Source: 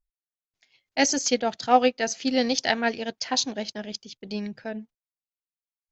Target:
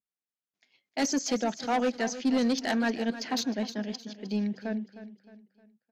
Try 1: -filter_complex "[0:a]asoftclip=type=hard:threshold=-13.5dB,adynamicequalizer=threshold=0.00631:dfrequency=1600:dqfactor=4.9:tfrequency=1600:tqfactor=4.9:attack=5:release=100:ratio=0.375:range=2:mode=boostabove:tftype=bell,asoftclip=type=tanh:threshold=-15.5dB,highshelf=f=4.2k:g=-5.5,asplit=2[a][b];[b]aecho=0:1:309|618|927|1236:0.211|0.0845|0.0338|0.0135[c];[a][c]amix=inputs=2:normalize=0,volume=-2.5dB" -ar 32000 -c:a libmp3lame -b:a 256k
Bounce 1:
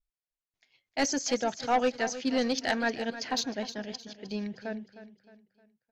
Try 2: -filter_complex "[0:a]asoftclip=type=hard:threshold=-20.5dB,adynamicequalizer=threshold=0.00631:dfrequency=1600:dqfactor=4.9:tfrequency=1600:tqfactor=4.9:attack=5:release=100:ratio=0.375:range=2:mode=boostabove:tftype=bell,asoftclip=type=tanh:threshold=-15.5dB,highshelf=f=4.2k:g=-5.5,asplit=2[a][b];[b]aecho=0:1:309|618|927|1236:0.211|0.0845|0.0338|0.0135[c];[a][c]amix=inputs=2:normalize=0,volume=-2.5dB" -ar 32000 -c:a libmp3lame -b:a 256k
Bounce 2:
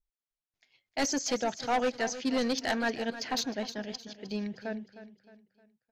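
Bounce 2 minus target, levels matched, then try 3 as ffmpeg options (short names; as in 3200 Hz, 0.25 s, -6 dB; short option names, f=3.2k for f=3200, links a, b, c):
250 Hz band -3.0 dB
-filter_complex "[0:a]asoftclip=type=hard:threshold=-20.5dB,adynamicequalizer=threshold=0.00631:dfrequency=1600:dqfactor=4.9:tfrequency=1600:tqfactor=4.9:attack=5:release=100:ratio=0.375:range=2:mode=boostabove:tftype=bell,highpass=f=210:t=q:w=2.1,asoftclip=type=tanh:threshold=-15.5dB,highshelf=f=4.2k:g=-5.5,asplit=2[a][b];[b]aecho=0:1:309|618|927|1236:0.211|0.0845|0.0338|0.0135[c];[a][c]amix=inputs=2:normalize=0,volume=-2.5dB" -ar 32000 -c:a libmp3lame -b:a 256k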